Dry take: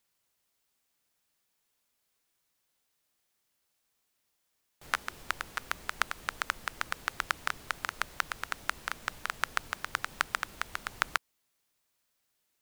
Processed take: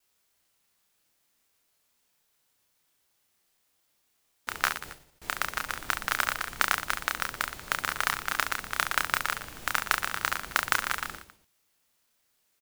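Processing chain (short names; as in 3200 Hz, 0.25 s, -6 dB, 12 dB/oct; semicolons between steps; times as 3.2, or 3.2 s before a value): slices in reverse order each 0.149 s, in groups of 5; modulation noise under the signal 10 dB; reverse bouncing-ball echo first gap 30 ms, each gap 1.3×, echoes 5; gain +3 dB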